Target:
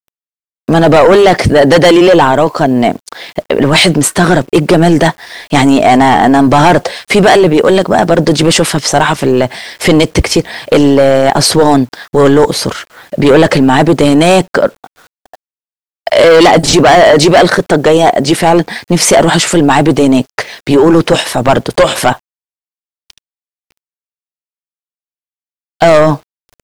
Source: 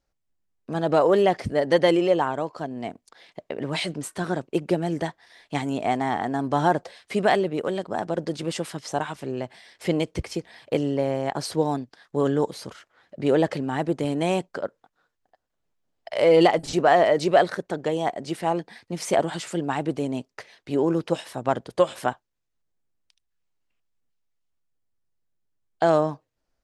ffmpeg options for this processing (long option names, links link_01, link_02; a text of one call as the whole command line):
ffmpeg -i in.wav -af "aeval=exprs='0.562*sin(PI/2*1.41*val(0)/0.562)':channel_layout=same,acrusher=bits=9:mix=0:aa=0.000001,apsyclip=19dB,volume=-1.5dB" out.wav